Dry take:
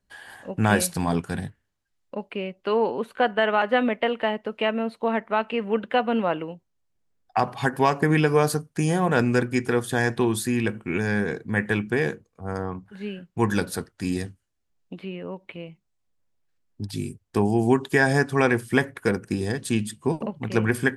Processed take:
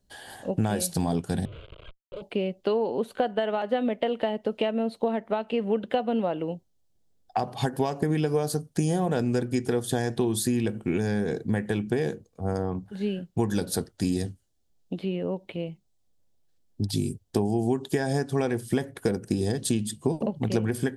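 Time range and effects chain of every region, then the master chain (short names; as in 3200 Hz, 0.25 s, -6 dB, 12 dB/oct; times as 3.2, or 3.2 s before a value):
1.45–2.22 delta modulation 16 kbps, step -35.5 dBFS + tube stage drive 36 dB, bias 0.2 + fixed phaser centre 1200 Hz, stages 8
whole clip: compressor, threshold -27 dBFS; band shelf 1600 Hz -9 dB; gain +5.5 dB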